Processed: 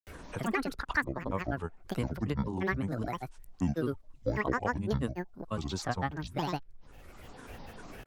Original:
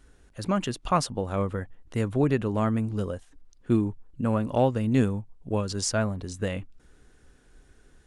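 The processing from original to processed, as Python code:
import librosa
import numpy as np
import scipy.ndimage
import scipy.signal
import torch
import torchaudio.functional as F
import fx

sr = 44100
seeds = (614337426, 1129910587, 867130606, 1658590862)

y = fx.peak_eq(x, sr, hz=990.0, db=12.5, octaves=0.32)
y = fx.granulator(y, sr, seeds[0], grain_ms=100.0, per_s=20.0, spray_ms=100.0, spread_st=12)
y = fx.band_squash(y, sr, depth_pct=70)
y = y * librosa.db_to_amplitude(-6.0)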